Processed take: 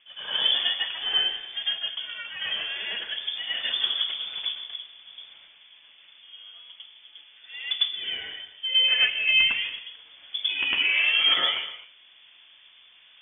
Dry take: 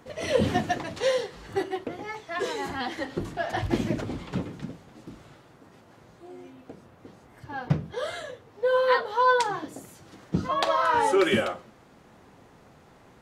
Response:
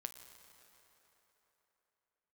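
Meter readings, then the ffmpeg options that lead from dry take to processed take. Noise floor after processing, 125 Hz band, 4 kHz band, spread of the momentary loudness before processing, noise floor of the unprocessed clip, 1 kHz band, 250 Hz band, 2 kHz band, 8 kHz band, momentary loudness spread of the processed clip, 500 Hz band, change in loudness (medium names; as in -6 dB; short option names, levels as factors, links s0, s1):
-55 dBFS, under -25 dB, +16.5 dB, 19 LU, -55 dBFS, -15.5 dB, under -20 dB, +5.5 dB, under -35 dB, 19 LU, -21.5 dB, +3.5 dB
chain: -filter_complex "[0:a]lowpass=f=3100:t=q:w=0.5098,lowpass=f=3100:t=q:w=0.6013,lowpass=f=3100:t=q:w=0.9,lowpass=f=3100:t=q:w=2.563,afreqshift=-3600,bandreject=f=50:t=h:w=6,bandreject=f=100:t=h:w=6,asplit=2[s0][s1];[1:a]atrim=start_sample=2205,afade=t=out:st=0.32:d=0.01,atrim=end_sample=14553,adelay=103[s2];[s1][s2]afir=irnorm=-1:irlink=0,volume=2.82[s3];[s0][s3]amix=inputs=2:normalize=0,volume=0.473"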